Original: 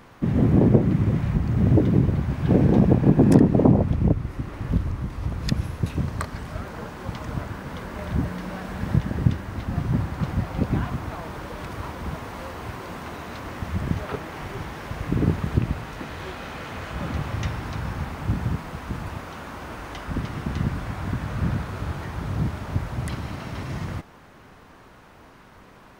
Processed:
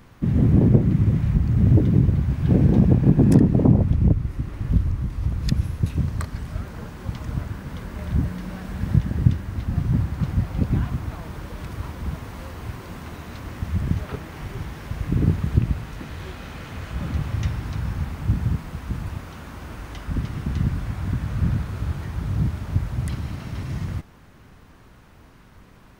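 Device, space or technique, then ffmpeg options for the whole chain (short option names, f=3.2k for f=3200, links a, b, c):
smiley-face EQ: -af "lowshelf=f=180:g=8.5,equalizer=f=720:t=o:w=2.2:g=-4,highshelf=f=7.8k:g=4,volume=-2.5dB"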